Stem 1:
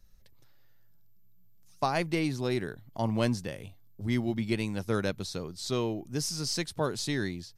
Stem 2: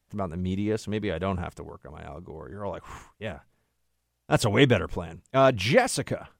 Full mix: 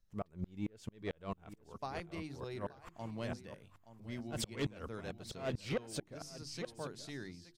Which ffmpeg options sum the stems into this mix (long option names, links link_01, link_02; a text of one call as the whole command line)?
ffmpeg -i stem1.wav -i stem2.wav -filter_complex "[0:a]highshelf=frequency=9700:gain=-8,bandreject=frequency=50:width_type=h:width=6,bandreject=frequency=100:width_type=h:width=6,bandreject=frequency=150:width_type=h:width=6,bandreject=frequency=200:width_type=h:width=6,bandreject=frequency=250:width_type=h:width=6,bandreject=frequency=300:width_type=h:width=6,bandreject=frequency=350:width_type=h:width=6,volume=-14dB,asplit=2[link_01][link_02];[link_02]volume=-15dB[link_03];[1:a]asoftclip=type=tanh:threshold=-18dB,aeval=exprs='val(0)*pow(10,-38*if(lt(mod(-4.5*n/s,1),2*abs(-4.5)/1000),1-mod(-4.5*n/s,1)/(2*abs(-4.5)/1000),(mod(-4.5*n/s,1)-2*abs(-4.5)/1000)/(1-2*abs(-4.5)/1000))/20)':channel_layout=same,volume=-0.5dB,asplit=2[link_04][link_05];[link_05]volume=-14.5dB[link_06];[link_03][link_06]amix=inputs=2:normalize=0,aecho=0:1:873:1[link_07];[link_01][link_04][link_07]amix=inputs=3:normalize=0,alimiter=level_in=4.5dB:limit=-24dB:level=0:latency=1:release=497,volume=-4.5dB" out.wav